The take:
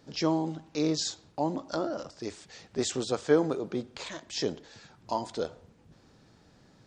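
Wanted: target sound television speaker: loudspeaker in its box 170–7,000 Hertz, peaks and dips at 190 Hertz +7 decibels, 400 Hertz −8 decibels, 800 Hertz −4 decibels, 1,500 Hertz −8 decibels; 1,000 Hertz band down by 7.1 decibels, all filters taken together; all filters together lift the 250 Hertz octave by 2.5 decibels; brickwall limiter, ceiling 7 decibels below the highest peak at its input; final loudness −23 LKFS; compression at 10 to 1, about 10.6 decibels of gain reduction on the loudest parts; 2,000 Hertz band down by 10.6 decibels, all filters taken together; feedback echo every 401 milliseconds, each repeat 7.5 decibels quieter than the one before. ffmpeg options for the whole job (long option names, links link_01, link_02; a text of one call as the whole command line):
ffmpeg -i in.wav -af "equalizer=frequency=250:width_type=o:gain=5.5,equalizer=frequency=1000:width_type=o:gain=-4,equalizer=frequency=2000:width_type=o:gain=-8.5,acompressor=threshold=-26dB:ratio=10,alimiter=level_in=0.5dB:limit=-24dB:level=0:latency=1,volume=-0.5dB,highpass=frequency=170:width=0.5412,highpass=frequency=170:width=1.3066,equalizer=frequency=190:width_type=q:width=4:gain=7,equalizer=frequency=400:width_type=q:width=4:gain=-8,equalizer=frequency=800:width_type=q:width=4:gain=-4,equalizer=frequency=1500:width_type=q:width=4:gain=-8,lowpass=frequency=7000:width=0.5412,lowpass=frequency=7000:width=1.3066,aecho=1:1:401|802|1203|1604|2005:0.422|0.177|0.0744|0.0312|0.0131,volume=14.5dB" out.wav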